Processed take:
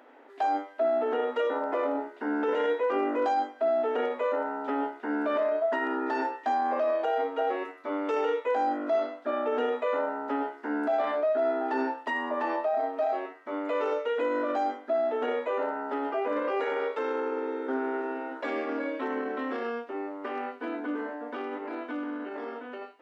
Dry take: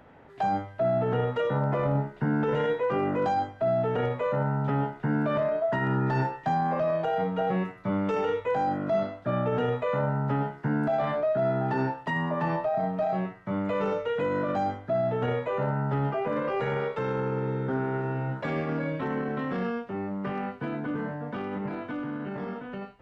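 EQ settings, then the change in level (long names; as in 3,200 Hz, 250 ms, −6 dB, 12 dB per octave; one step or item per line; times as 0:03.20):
linear-phase brick-wall high-pass 240 Hz
0.0 dB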